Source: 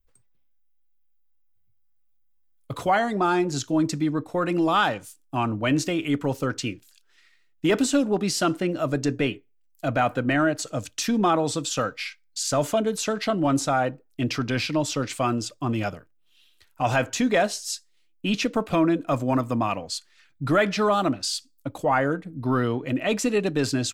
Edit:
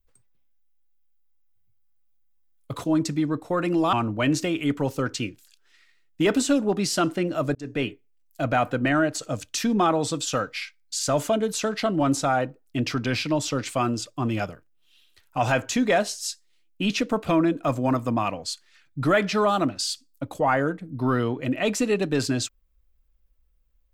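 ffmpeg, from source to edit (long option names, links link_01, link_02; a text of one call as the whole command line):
ffmpeg -i in.wav -filter_complex "[0:a]asplit=4[link_01][link_02][link_03][link_04];[link_01]atrim=end=2.842[link_05];[link_02]atrim=start=3.678:end=4.772[link_06];[link_03]atrim=start=5.368:end=8.99,asetpts=PTS-STARTPTS,afade=type=out:start_time=3.618:duration=0.004:curve=hsin[link_07];[link_04]atrim=start=8.99,asetpts=PTS-STARTPTS,afade=type=in:duration=0.32[link_08];[link_05][link_06]acrossfade=duration=0.004:curve1=hsin:curve2=hsin[link_09];[link_07][link_08]concat=n=2:v=0:a=1[link_10];[link_09][link_10]acrossfade=duration=0.004:curve1=hsin:curve2=hsin" out.wav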